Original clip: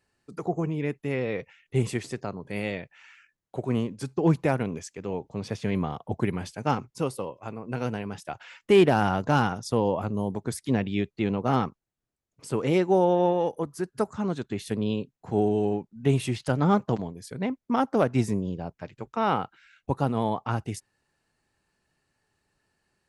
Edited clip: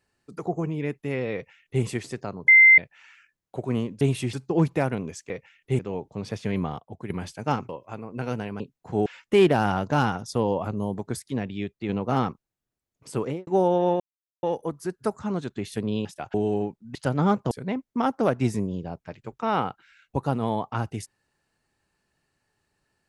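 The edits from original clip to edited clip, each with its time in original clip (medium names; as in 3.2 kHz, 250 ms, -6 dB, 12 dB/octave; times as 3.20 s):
1.34–1.83 s: copy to 4.98 s
2.48–2.78 s: bleep 2.08 kHz -9.5 dBFS
5.99–6.29 s: gain -10 dB
6.88–7.23 s: delete
8.14–8.43 s: swap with 14.99–15.45 s
10.56–11.26 s: gain -4 dB
12.57–12.84 s: studio fade out
13.37 s: insert silence 0.43 s
16.06–16.38 s: move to 4.01 s
16.94–17.25 s: delete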